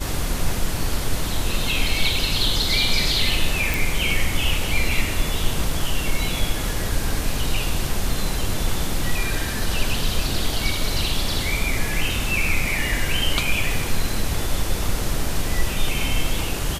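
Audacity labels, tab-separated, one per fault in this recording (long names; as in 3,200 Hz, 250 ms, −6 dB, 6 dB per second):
3.740000	3.740000	click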